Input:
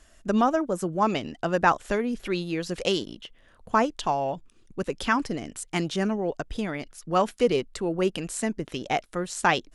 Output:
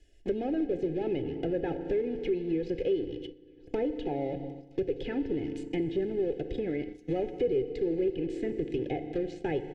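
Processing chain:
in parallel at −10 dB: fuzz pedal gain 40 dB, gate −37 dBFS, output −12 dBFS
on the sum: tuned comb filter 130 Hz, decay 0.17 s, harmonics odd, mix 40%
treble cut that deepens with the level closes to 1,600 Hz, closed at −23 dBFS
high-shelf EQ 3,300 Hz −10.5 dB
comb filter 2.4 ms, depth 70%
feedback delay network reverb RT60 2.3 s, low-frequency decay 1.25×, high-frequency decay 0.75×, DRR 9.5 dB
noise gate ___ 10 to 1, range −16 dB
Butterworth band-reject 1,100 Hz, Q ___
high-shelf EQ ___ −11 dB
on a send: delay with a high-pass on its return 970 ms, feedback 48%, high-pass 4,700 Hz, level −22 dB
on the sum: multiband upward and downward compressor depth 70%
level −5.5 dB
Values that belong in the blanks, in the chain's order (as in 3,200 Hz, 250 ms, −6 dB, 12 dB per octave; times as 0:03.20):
−34 dBFS, 0.66, 9,200 Hz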